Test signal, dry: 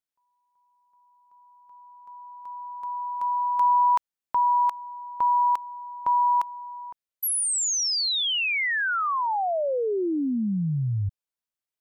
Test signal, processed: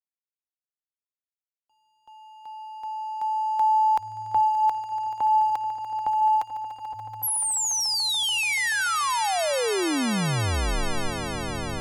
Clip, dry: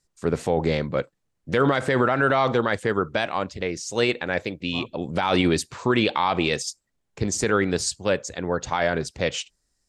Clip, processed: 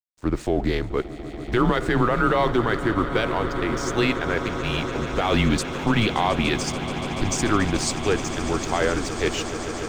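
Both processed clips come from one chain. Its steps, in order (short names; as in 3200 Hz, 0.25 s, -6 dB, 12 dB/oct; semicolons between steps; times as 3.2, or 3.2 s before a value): backlash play -41 dBFS; frequency shift -110 Hz; swelling echo 0.144 s, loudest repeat 8, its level -16 dB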